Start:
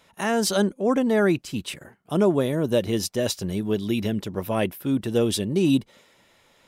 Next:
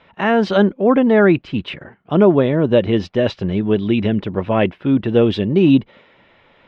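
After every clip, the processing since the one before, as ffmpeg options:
-af "lowpass=f=3.1k:w=0.5412,lowpass=f=3.1k:w=1.3066,volume=8dB"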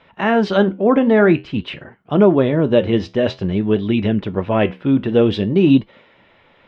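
-af "flanger=delay=7.2:depth=7.4:regen=-72:speed=0.51:shape=triangular,volume=4dB"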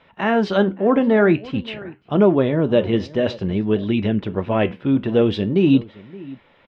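-filter_complex "[0:a]asplit=2[a][b];[b]adelay=571.4,volume=-20dB,highshelf=f=4k:g=-12.9[c];[a][c]amix=inputs=2:normalize=0,volume=-2.5dB"

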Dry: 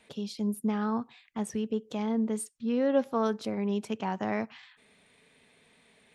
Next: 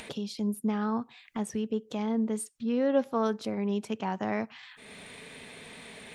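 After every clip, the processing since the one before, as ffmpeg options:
-af "acompressor=mode=upward:threshold=-32dB:ratio=2.5"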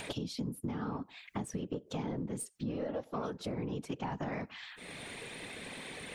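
-af "aeval=exprs='0.2*(cos(1*acos(clip(val(0)/0.2,-1,1)))-cos(1*PI/2))+0.00398*(cos(8*acos(clip(val(0)/0.2,-1,1)))-cos(8*PI/2))':c=same,afftfilt=real='hypot(re,im)*cos(2*PI*random(0))':imag='hypot(re,im)*sin(2*PI*random(1))':win_size=512:overlap=0.75,acompressor=threshold=-41dB:ratio=12,volume=7.5dB"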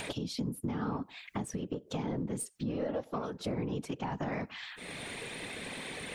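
-af "alimiter=level_in=4.5dB:limit=-24dB:level=0:latency=1:release=255,volume=-4.5dB,volume=3.5dB"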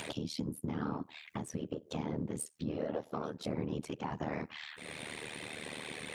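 -af "tremolo=f=76:d=0.857,highpass=71,volume=1.5dB"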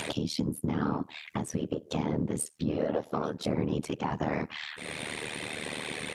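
-af "aresample=32000,aresample=44100,volume=7dB"

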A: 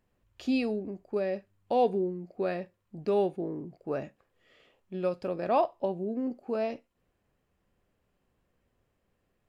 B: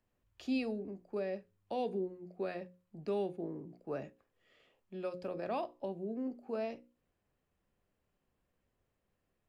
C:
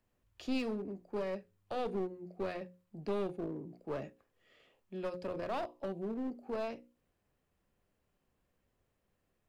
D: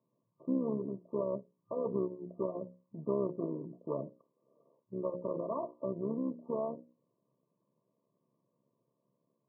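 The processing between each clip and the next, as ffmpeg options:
-filter_complex "[0:a]bandreject=f=60:t=h:w=6,bandreject=f=120:t=h:w=6,bandreject=f=180:t=h:w=6,bandreject=f=240:t=h:w=6,bandreject=f=300:t=h:w=6,bandreject=f=360:t=h:w=6,bandreject=f=420:t=h:w=6,bandreject=f=480:t=h:w=6,bandreject=f=540:t=h:w=6,acrossover=split=200|340|1600[a][b][c][d];[c]alimiter=level_in=2dB:limit=-24dB:level=0:latency=1:release=185,volume=-2dB[e];[a][b][e][d]amix=inputs=4:normalize=0,volume=-6dB"
-af "aeval=exprs='clip(val(0),-1,0.0112)':c=same,volume=2dB"
-af "tremolo=f=69:d=0.71,asuperstop=centerf=780:order=8:qfactor=4.3,afftfilt=real='re*between(b*sr/4096,110,1200)':imag='im*between(b*sr/4096,110,1200)':win_size=4096:overlap=0.75,volume=6dB"

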